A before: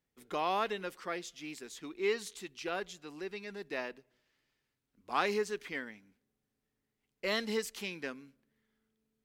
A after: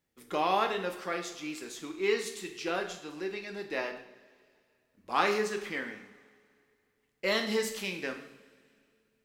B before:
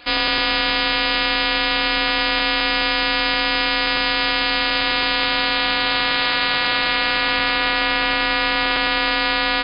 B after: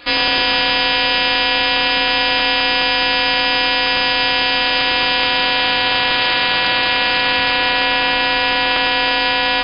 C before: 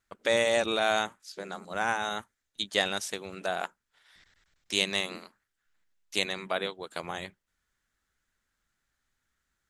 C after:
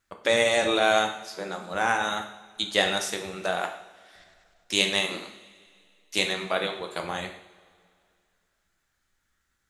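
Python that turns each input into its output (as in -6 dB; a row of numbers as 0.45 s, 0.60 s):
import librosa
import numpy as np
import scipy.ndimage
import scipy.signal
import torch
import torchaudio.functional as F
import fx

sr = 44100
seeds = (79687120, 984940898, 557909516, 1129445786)

y = fx.rev_double_slope(x, sr, seeds[0], early_s=0.6, late_s=2.4, knee_db=-18, drr_db=3.5)
y = y * 10.0 ** (3.0 / 20.0)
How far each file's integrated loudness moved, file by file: +4.5 LU, +3.5 LU, +4.5 LU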